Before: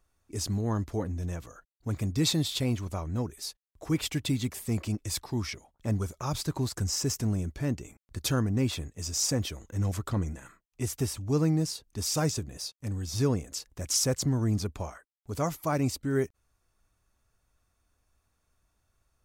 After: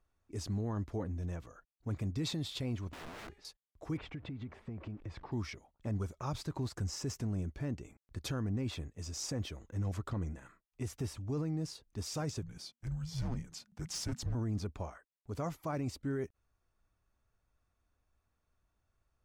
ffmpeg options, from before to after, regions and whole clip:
-filter_complex "[0:a]asettb=1/sr,asplit=3[a][b][c];[a]atrim=end=2.894[d];[b]atrim=start=2.89:end=3.45,asetpts=PTS-STARTPTS,afade=t=in:d=0.004:c=qsin,afade=t=out:st=0.556:d=0.004:c=qsin,lowpass=2.6k,aeval=exprs='(mod(63.1*val(0)+1,2)-1)/63.1':c=same,bandreject=f=408.8:t=h:w=4,bandreject=f=817.6:t=h:w=4,bandreject=f=1.2264k:t=h:w=4,bandreject=f=1.6352k:t=h:w=4,bandreject=f=2.044k:t=h:w=4,bandreject=f=2.4528k:t=h:w=4,bandreject=f=2.8616k:t=h:w=4,bandreject=f=3.2704k:t=h:w=4,bandreject=f=3.6792k:t=h:w=4,bandreject=f=4.088k:t=h:w=4,bandreject=f=4.4968k:t=h:w=4,bandreject=f=4.9056k:t=h:w=4,bandreject=f=5.3144k:t=h:w=4,bandreject=f=5.7232k:t=h:w=4,bandreject=f=6.132k:t=h:w=4,bandreject=f=6.5408k:t=h:w=4,bandreject=f=6.9496k:t=h:w=4,bandreject=f=7.3584k:t=h:w=4,bandreject=f=7.7672k:t=h:w=4,bandreject=f=8.176k:t=h:w=4,bandreject=f=8.5848k:t=h:w=4,bandreject=f=8.9936k:t=h:w=4,bandreject=f=9.4024k:t=h:w=4,bandreject=f=9.8112k:t=h:w=4,bandreject=f=10.22k:t=h:w=4,bandreject=f=10.6288k:t=h:w=4,bandreject=f=11.0376k:t=h:w=4,bandreject=f=11.4464k:t=h:w=4,bandreject=f=11.8552k:t=h:w=4,bandreject=f=12.264k:t=h:w=4,bandreject=f=12.6728k:t=h:w=4[e];[c]atrim=start=3.446[f];[d][e]acrossfade=d=0.004:c1=hsin:c2=qsin[g];[g][f]acrossfade=d=0.004:c1=qsin:c2=hsin,asettb=1/sr,asplit=3[h][i][j];[h]atrim=end=3.974[k];[i]atrim=start=3.97:end=5.32,asetpts=PTS-STARTPTS,afade=t=in:d=0.004:c=qsin,afade=t=out:st=1.346:d=0.004:c=qsin,aeval=exprs='val(0)+0.5*0.00562*sgn(val(0))':c=same,lowpass=2k,acompressor=threshold=-33dB:ratio=12:attack=3.2:release=140:knee=1:detection=peak[l];[j]atrim=start=5.316[m];[k][l]acrossfade=d=0.004:c1=hsin:c2=qsin[n];[n][m]acrossfade=d=0.004:c1=qsin:c2=hsin,asettb=1/sr,asplit=3[o][p][q];[o]atrim=end=12.424[r];[p]atrim=start=12.42:end=14.35,asetpts=PTS-STARTPTS,afade=t=in:d=0.004:c=qsin,afade=t=out:st=1.926:d=0.004:c=qsin,asoftclip=type=hard:threshold=-23.5dB,afreqshift=-240[s];[q]atrim=start=14.346[t];[r][s]acrossfade=d=0.004:c1=hsin:c2=qsin[u];[u][t]acrossfade=d=0.004:c1=qsin:c2=hsin,lowpass=f=2.8k:p=1,alimiter=limit=-23.5dB:level=0:latency=1:release=19,volume=-5dB"

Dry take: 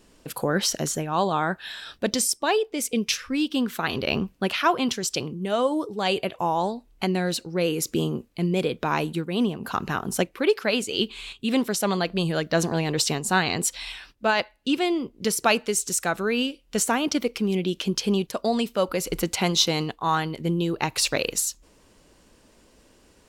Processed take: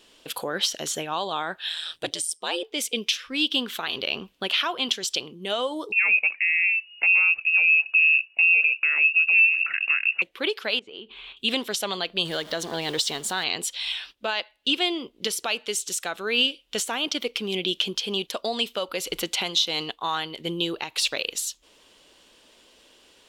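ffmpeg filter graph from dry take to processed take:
-filter_complex "[0:a]asettb=1/sr,asplit=3[a][b][c];[a]atrim=end=1.694[d];[b]atrim=start=1.69:end=2.63,asetpts=PTS-STARTPTS,afade=t=in:d=0.004:c=qsin,afade=t=out:st=0.936:d=0.004:c=qsin,equalizer=f=8.8k:t=o:w=0.38:g=13.5,aeval=exprs='val(0)*sin(2*PI*82*n/s)':c=same[e];[c]atrim=start=2.626[f];[d][e]acrossfade=d=0.004:c1=hsin:c2=qsin[g];[g][f]acrossfade=d=0.004:c1=qsin:c2=hsin,asettb=1/sr,asplit=3[h][i][j];[h]atrim=end=5.924[k];[i]atrim=start=5.92:end=10.22,asetpts=PTS-STARTPTS,afade=t=in:d=0.004:c=qsin,afade=t=out:st=4.296:d=0.004:c=qsin,equalizer=f=300:t=o:w=0.72:g=15,lowpass=f=2.5k:t=q:w=0.5098,lowpass=f=2.5k:t=q:w=0.6013,lowpass=f=2.5k:t=q:w=0.9,lowpass=f=2.5k:t=q:w=2.563,afreqshift=-2900[l];[j]atrim=start=10.216[m];[k][l]acrossfade=d=0.004:c1=hsin:c2=qsin[n];[n][m]acrossfade=d=0.004:c1=qsin:c2=hsin,asettb=1/sr,asplit=3[o][p][q];[o]atrim=end=10.794[r];[p]atrim=start=10.79:end=11.37,asetpts=PTS-STARTPTS,afade=t=in:d=0.004:c=qsin,afade=t=out:st=0.576:d=0.004:c=qsin,lowpass=1.5k,acompressor=threshold=-35dB:ratio=10:attack=3.2:release=140:knee=1:detection=peak[s];[q]atrim=start=11.366[t];[r][s]acrossfade=d=0.004:c1=hsin:c2=qsin[u];[u][t]acrossfade=d=0.004:c1=qsin:c2=hsin,asettb=1/sr,asplit=3[v][w][x];[v]atrim=end=12.254[y];[w]atrim=start=12.25:end=13.44,asetpts=PTS-STARTPTS,afade=t=in:d=0.004:c=qsin,afade=t=out:st=1.186:d=0.004:c=qsin,aeval=exprs='val(0)+0.5*0.02*sgn(val(0))':c=same,equalizer=f=2.6k:t=o:w=0.24:g=-9[z];[x]atrim=start=13.436[aa];[y][z]acrossfade=d=0.004:c1=hsin:c2=qsin[ab];[ab][aa]acrossfade=d=0.004:c1=qsin:c2=hsin,bass=f=250:g=-13,treble=f=4k:g=0,alimiter=limit=-18dB:level=0:latency=1:release=335,equalizer=f=3.3k:t=o:w=0.75:g=12.5"

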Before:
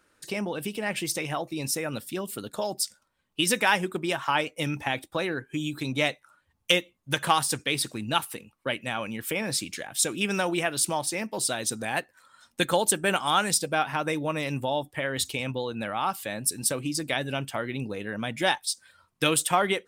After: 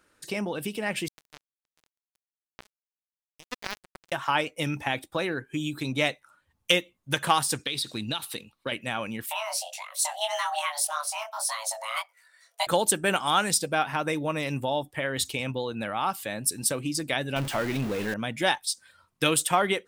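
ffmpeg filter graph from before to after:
-filter_complex "[0:a]asettb=1/sr,asplit=3[a][b][c];[a]atrim=end=1.084[d];[b]atrim=start=1.08:end=4.12,asetpts=PTS-STARTPTS,afade=t=in:d=0.004:c=qsin,afade=t=out:st=3.036:d=0.004:c=qsin,deesser=0.85,acrusher=bits=2:mix=0:aa=0.5[e];[c]atrim=start=4.116[f];[d][e]acrossfade=d=0.004:c1=hsin:c2=qsin[g];[g][f]acrossfade=d=0.004:c1=qsin:c2=hsin,asettb=1/sr,asplit=3[h][i][j];[h]atrim=end=7.634[k];[i]atrim=start=7.63:end=8.72,asetpts=PTS-STARTPTS,afade=t=in:d=0.004:c=qsin,afade=t=out:st=1.086:d=0.004:c=qsin,equalizer=f=3.9k:t=o:w=0.55:g=13,acompressor=threshold=-25dB:ratio=12:attack=3.2:release=140:knee=1:detection=peak[l];[j]atrim=start=8.716[m];[k][l]acrossfade=d=0.004:c1=hsin:c2=qsin[n];[n][m]acrossfade=d=0.004:c1=qsin:c2=hsin,asettb=1/sr,asplit=3[o][p][q];[o]atrim=end=9.264[r];[p]atrim=start=9.26:end=12.67,asetpts=PTS-STARTPTS,afade=t=in:d=0.004:c=qsin,afade=t=out:st=3.406:d=0.004:c=qsin,highshelf=f=11k:g=4.5,flanger=delay=19:depth=7:speed=1.7,afreqshift=440[s];[q]atrim=start=12.666[t];[r][s]acrossfade=d=0.004:c1=hsin:c2=qsin[u];[u][t]acrossfade=d=0.004:c1=qsin:c2=hsin,asettb=1/sr,asplit=3[v][w][x];[v]atrim=end=17.364[y];[w]atrim=start=17.36:end=18.14,asetpts=PTS-STARTPTS,afade=t=in:d=0.004:c=qsin,afade=t=out:st=0.776:d=0.004:c=qsin,aeval=exprs='val(0)+0.5*0.0335*sgn(val(0))':c=same,equalizer=f=11k:t=o:w=2.5:g=-2.5[z];[x]atrim=start=18.136[aa];[y][z]acrossfade=d=0.004:c1=hsin:c2=qsin[ab];[ab][aa]acrossfade=d=0.004:c1=qsin:c2=hsin"

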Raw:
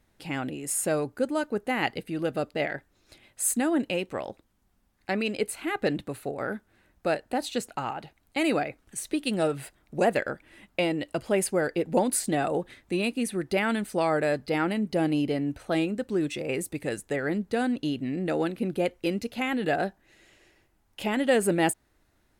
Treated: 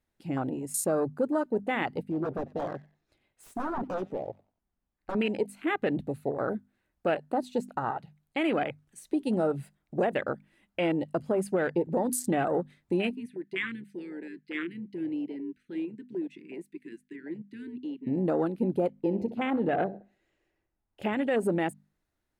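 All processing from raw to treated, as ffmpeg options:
-filter_complex "[0:a]asettb=1/sr,asplit=3[a][b][c];[a]atrim=end=2.054[d];[b]atrim=start=2.05:end=5.15,asetpts=PTS-STARTPTS,afade=t=in:d=0.004:c=qsin,afade=t=out:st=3.096:d=0.004:c=qsin,aeval=exprs='0.0447*(abs(mod(val(0)/0.0447+3,4)-2)-1)':c=same,highshelf=f=3k:g=-10,asplit=4[e][f][g][h];[f]adelay=92,afreqshift=44,volume=-16dB[i];[g]adelay=184,afreqshift=88,volume=-26.5dB[j];[h]adelay=276,afreqshift=132,volume=-36.9dB[k];[e][i][j][k]amix=inputs=4:normalize=0,atrim=end_sample=136710[l];[c]atrim=start=5.146[m];[d][l]acrossfade=d=0.004:c1=hsin:c2=qsin[n];[n][m]acrossfade=d=0.004:c1=qsin:c2=hsin,asettb=1/sr,asplit=3[o][p][q];[o]atrim=end=13.154[r];[p]atrim=start=13.15:end=18.07,asetpts=PTS-STARTPTS,afade=t=in:d=0.004:c=qsin,afade=t=out:st=4.916:d=0.004:c=qsin,asuperstop=centerf=770:order=8:qfactor=0.58,acrossover=split=360 2900:gain=0.112 1 0.178[s][t][u];[s][t][u]amix=inputs=3:normalize=0[v];[q]atrim=start=18.066[w];[r][v]acrossfade=d=0.004:c1=hsin:c2=qsin[x];[x][w]acrossfade=d=0.004:c1=qsin:c2=hsin,asettb=1/sr,asplit=3[y][z][aa];[y]atrim=end=18.904[ab];[z]atrim=start=18.9:end=21.02,asetpts=PTS-STARTPTS,afade=t=in:d=0.004:c=qsin,afade=t=out:st=2.116:d=0.004:c=qsin,highshelf=f=2.4k:g=-11,asplit=2[ac][ad];[ad]adelay=64,lowpass=f=3.6k:p=1,volume=-13dB,asplit=2[ae][af];[af]adelay=64,lowpass=f=3.6k:p=1,volume=0.49,asplit=2[ag][ah];[ah]adelay=64,lowpass=f=3.6k:p=1,volume=0.49,asplit=2[ai][aj];[aj]adelay=64,lowpass=f=3.6k:p=1,volume=0.49,asplit=2[ak][al];[al]adelay=64,lowpass=f=3.6k:p=1,volume=0.49[am];[ac][ae][ag][ai][ak][am]amix=inputs=6:normalize=0,atrim=end_sample=93492[an];[aa]atrim=start=21.016[ao];[ab][an]acrossfade=d=0.004:c1=hsin:c2=qsin[ap];[ap][ao]acrossfade=d=0.004:c1=qsin:c2=hsin,afwtdn=0.0224,bandreject=f=50:t=h:w=6,bandreject=f=100:t=h:w=6,bandreject=f=150:t=h:w=6,bandreject=f=200:t=h:w=6,bandreject=f=250:t=h:w=6,alimiter=limit=-20.5dB:level=0:latency=1:release=119,volume=2.5dB"

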